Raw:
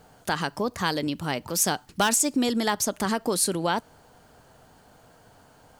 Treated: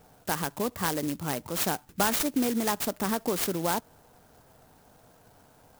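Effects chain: high shelf 10000 Hz -6.5 dB; clock jitter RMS 0.088 ms; gain -2.5 dB

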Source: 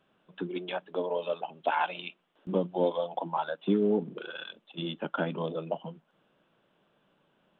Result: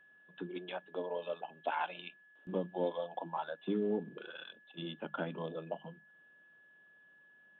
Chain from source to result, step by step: whine 1700 Hz -53 dBFS; notches 50/100/150/200 Hz; gain -7.5 dB

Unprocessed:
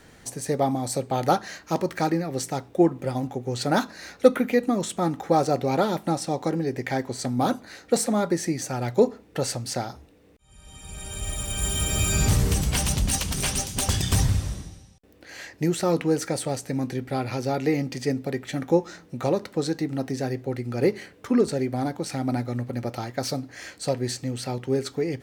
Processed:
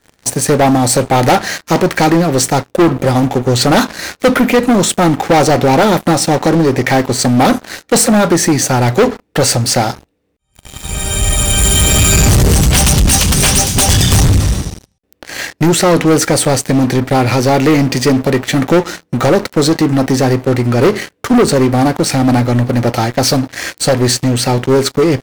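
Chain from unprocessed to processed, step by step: sample leveller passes 5; gain +1 dB

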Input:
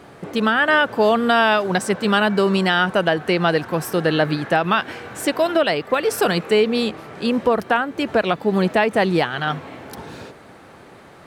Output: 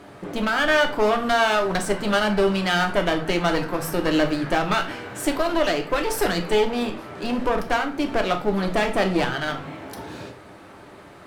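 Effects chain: one-sided clip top -25.5 dBFS; on a send: reverb RT60 0.35 s, pre-delay 3 ms, DRR 4 dB; on the sum: gain -2 dB

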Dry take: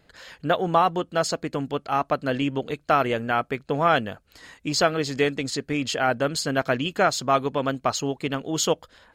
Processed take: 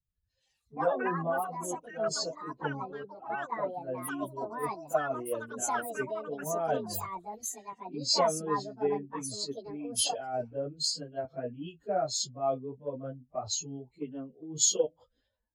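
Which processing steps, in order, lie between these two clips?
spectral contrast raised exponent 1.8; bell 1400 Hz -15 dB 1.4 oct; plain phase-vocoder stretch 1.7×; dynamic EQ 210 Hz, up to -5 dB, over -46 dBFS, Q 1.4; echoes that change speed 0.221 s, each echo +7 st, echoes 2; three-band expander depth 100%; gain -4 dB

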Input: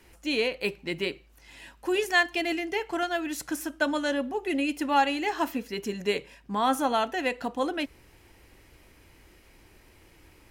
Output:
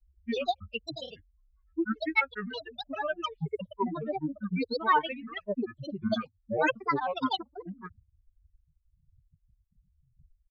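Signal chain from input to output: per-bin expansion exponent 3; steep low-pass 2900 Hz 36 dB/oct; grains, pitch spread up and down by 12 st; gain +4 dB

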